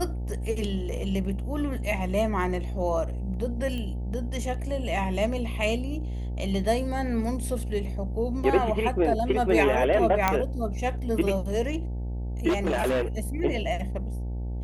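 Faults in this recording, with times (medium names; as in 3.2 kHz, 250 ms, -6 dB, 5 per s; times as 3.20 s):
buzz 60 Hz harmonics 15 -31 dBFS
3.78 s: pop -23 dBFS
10.28 s: pop -7 dBFS
12.48–13.20 s: clipped -21 dBFS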